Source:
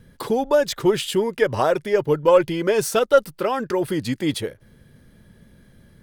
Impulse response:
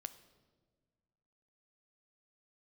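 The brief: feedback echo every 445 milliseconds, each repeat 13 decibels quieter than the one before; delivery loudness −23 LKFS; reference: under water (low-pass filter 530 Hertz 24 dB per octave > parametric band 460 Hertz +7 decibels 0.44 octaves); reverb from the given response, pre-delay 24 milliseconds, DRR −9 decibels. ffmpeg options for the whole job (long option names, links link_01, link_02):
-filter_complex "[0:a]aecho=1:1:445|890|1335:0.224|0.0493|0.0108,asplit=2[link_01][link_02];[1:a]atrim=start_sample=2205,adelay=24[link_03];[link_02][link_03]afir=irnorm=-1:irlink=0,volume=13dB[link_04];[link_01][link_04]amix=inputs=2:normalize=0,lowpass=frequency=530:width=0.5412,lowpass=frequency=530:width=1.3066,equalizer=frequency=460:width_type=o:width=0.44:gain=7,volume=-14dB"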